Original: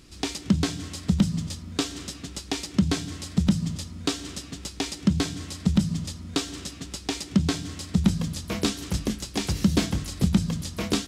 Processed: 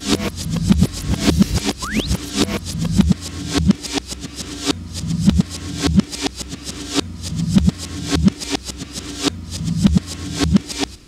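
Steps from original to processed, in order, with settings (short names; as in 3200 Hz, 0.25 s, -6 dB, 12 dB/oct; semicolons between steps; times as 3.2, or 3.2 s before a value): whole clip reversed; painted sound rise, 1.82–2.07, 950–4500 Hz -35 dBFS; gain +7.5 dB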